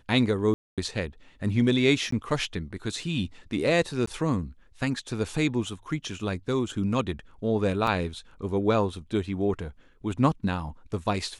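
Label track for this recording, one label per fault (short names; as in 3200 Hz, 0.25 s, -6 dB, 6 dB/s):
0.540000	0.780000	gap 0.237 s
2.110000	2.120000	gap 14 ms
4.060000	4.070000	gap 14 ms
7.870000	7.870000	gap 2.9 ms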